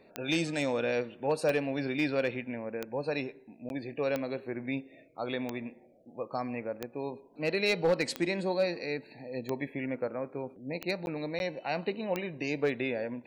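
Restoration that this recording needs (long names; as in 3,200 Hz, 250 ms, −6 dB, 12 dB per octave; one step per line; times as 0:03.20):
clipped peaks rebuilt −19.5 dBFS
click removal
repair the gap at 0:03.69/0:11.06/0:11.39, 11 ms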